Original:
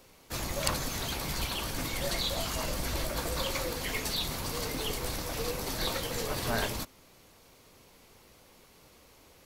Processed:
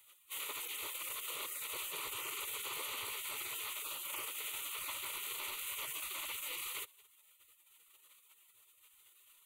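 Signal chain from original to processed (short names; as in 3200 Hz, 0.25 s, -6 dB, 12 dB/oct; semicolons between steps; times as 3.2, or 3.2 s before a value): spectral gate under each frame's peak -20 dB weak; high shelf 8300 Hz -4 dB; limiter -37.5 dBFS, peak gain reduction 11.5 dB; fixed phaser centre 1100 Hz, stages 8; gain +9 dB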